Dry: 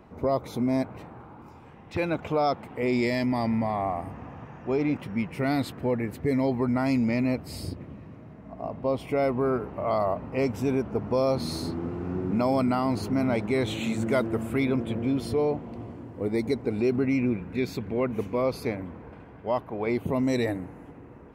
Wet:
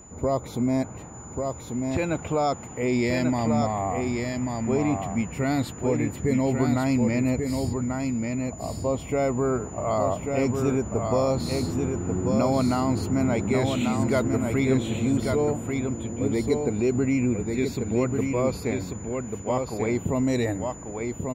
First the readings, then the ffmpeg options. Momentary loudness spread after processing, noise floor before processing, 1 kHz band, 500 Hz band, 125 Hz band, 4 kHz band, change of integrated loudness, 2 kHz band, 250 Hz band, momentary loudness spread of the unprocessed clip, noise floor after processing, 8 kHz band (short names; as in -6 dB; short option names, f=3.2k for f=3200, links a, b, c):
7 LU, -47 dBFS, +1.5 dB, +1.5 dB, +5.0 dB, +1.0 dB, +2.0 dB, +1.5 dB, +2.5 dB, 15 LU, -39 dBFS, +13.0 dB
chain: -af "lowshelf=f=110:g=8.5,aeval=exprs='val(0)+0.00398*sin(2*PI*7000*n/s)':c=same,aecho=1:1:1140:0.596"